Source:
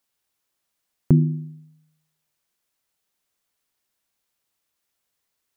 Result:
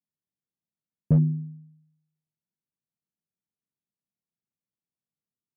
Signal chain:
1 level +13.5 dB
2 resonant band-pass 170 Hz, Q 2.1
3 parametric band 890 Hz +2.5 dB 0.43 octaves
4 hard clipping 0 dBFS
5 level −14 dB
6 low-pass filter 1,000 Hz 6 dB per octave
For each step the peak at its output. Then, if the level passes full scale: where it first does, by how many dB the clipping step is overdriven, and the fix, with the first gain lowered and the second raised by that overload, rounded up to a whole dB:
+9.0, +5.5, +5.5, 0.0, −14.0, −14.0 dBFS
step 1, 5.5 dB
step 1 +7.5 dB, step 5 −8 dB

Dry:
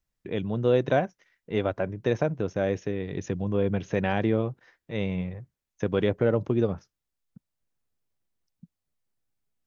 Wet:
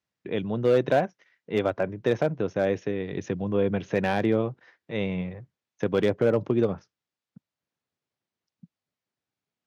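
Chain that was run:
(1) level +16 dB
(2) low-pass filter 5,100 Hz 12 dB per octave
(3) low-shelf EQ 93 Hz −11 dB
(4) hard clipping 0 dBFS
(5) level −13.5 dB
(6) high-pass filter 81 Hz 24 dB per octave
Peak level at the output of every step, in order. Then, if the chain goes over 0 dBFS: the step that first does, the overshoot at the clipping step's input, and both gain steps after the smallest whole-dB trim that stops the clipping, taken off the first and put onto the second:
+6.5, +6.5, +5.5, 0.0, −13.5, −10.0 dBFS
step 1, 5.5 dB
step 1 +10 dB, step 5 −7.5 dB

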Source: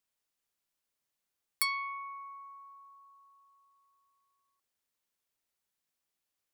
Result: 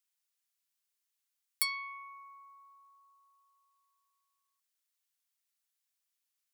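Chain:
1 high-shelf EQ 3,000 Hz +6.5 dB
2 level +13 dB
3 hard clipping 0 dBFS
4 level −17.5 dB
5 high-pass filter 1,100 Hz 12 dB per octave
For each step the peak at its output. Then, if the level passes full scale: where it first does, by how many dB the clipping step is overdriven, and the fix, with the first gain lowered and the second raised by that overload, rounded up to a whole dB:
−7.0, +6.0, 0.0, −17.5, −16.0 dBFS
step 2, 6.0 dB
step 2 +7 dB, step 4 −11.5 dB

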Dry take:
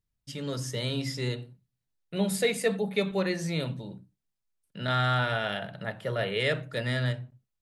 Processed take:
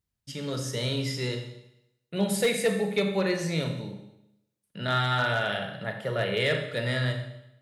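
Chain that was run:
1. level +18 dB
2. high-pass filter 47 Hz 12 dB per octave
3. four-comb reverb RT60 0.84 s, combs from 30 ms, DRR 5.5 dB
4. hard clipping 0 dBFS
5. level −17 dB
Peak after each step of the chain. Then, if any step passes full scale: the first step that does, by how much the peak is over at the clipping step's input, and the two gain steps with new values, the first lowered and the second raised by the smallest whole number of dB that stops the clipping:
+4.0, +4.0, +5.0, 0.0, −17.0 dBFS
step 1, 5.0 dB
step 1 +13 dB, step 5 −12 dB

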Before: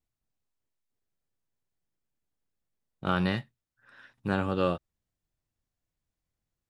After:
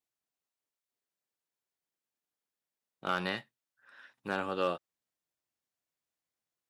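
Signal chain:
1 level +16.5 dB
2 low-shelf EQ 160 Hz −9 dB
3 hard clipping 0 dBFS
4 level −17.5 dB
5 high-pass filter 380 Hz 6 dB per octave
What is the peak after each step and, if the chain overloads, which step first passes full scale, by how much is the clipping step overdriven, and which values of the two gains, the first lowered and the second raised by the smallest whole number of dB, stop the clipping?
+4.5, +4.0, 0.0, −17.5, −17.5 dBFS
step 1, 4.0 dB
step 1 +12.5 dB, step 4 −13.5 dB

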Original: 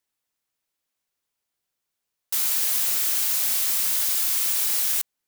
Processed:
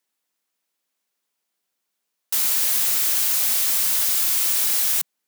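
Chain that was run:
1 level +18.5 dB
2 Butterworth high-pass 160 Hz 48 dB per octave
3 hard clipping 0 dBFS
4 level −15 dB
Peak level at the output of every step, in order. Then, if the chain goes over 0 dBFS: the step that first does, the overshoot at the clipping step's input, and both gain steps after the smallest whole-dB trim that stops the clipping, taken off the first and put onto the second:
+9.0, +9.0, 0.0, −15.0 dBFS
step 1, 9.0 dB
step 1 +9.5 dB, step 4 −6 dB

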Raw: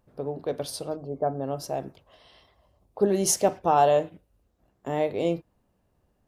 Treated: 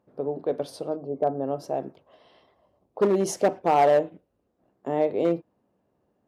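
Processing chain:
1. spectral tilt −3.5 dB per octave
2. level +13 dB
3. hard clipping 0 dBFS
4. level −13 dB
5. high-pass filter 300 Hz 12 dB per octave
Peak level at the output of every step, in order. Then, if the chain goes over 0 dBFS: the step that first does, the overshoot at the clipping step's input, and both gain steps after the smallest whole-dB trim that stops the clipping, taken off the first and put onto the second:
−6.0, +7.0, 0.0, −13.0, −9.0 dBFS
step 2, 7.0 dB
step 2 +6 dB, step 4 −6 dB

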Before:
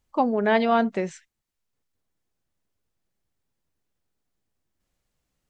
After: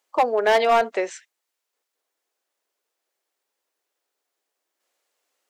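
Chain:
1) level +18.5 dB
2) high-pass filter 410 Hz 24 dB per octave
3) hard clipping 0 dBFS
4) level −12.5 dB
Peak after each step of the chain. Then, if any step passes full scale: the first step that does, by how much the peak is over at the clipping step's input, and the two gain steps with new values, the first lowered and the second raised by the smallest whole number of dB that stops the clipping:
+9.5, +8.5, 0.0, −12.5 dBFS
step 1, 8.5 dB
step 1 +9.5 dB, step 4 −3.5 dB

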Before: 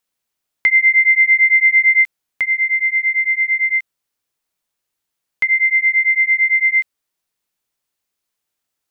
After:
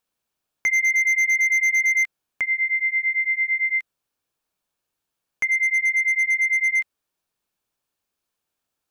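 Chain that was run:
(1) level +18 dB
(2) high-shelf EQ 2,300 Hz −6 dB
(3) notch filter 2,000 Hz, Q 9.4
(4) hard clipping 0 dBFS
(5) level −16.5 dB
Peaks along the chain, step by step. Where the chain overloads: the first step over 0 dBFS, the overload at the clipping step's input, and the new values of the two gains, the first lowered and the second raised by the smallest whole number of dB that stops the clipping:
+12.0, +9.5, +9.0, 0.0, −16.5 dBFS
step 1, 9.0 dB
step 1 +9 dB, step 5 −7.5 dB

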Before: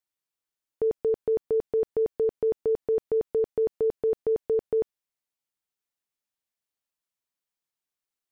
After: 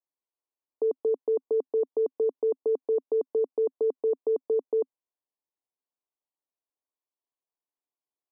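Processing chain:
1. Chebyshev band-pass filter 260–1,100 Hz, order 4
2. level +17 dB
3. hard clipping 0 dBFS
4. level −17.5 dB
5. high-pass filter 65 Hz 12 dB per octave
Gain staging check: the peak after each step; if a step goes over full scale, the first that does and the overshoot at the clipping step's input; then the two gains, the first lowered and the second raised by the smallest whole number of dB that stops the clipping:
−19.0, −2.0, −2.0, −19.5, −19.5 dBFS
no step passes full scale

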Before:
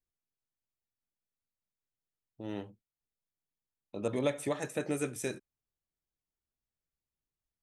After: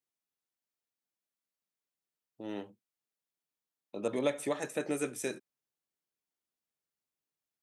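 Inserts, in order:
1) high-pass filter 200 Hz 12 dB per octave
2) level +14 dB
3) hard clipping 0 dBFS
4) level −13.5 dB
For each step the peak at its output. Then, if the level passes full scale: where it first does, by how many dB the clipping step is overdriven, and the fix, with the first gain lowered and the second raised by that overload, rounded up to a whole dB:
−17.0, −3.0, −3.0, −16.5 dBFS
no step passes full scale

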